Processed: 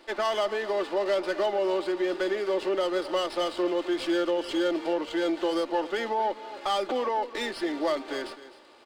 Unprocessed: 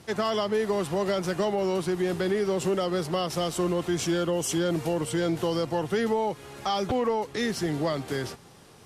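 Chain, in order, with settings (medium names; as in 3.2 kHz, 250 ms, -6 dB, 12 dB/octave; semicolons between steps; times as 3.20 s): high-pass 320 Hz 24 dB/octave; comb 3.4 ms, depth 49%; on a send: delay 261 ms -15.5 dB; on the sum: resampled via 11.025 kHz; sliding maximum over 3 samples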